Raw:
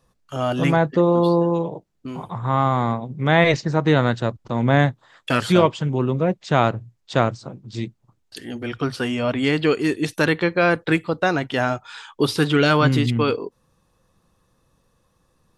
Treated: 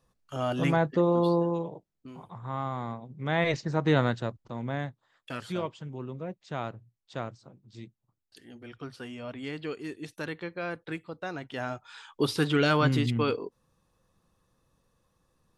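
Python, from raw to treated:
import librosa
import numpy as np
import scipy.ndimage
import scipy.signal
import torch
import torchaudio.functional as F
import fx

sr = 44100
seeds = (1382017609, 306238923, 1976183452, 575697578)

y = fx.gain(x, sr, db=fx.line((1.34, -7.0), (2.16, -14.0), (3.01, -14.0), (3.99, -6.0), (4.8, -17.0), (11.22, -17.0), (12.21, -7.0)))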